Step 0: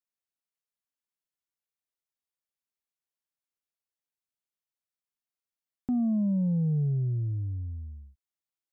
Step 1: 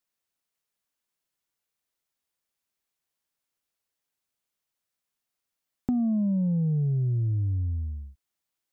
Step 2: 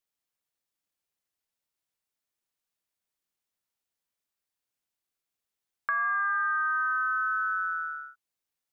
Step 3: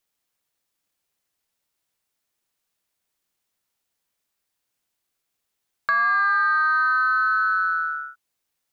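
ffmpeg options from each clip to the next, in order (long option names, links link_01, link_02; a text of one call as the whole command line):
ffmpeg -i in.wav -af "acompressor=threshold=-32dB:ratio=6,volume=8dB" out.wav
ffmpeg -i in.wav -af "aeval=exprs='val(0)*sin(2*PI*1400*n/s)':channel_layout=same" out.wav
ffmpeg -i in.wav -af "asoftclip=type=tanh:threshold=-20dB,volume=8.5dB" out.wav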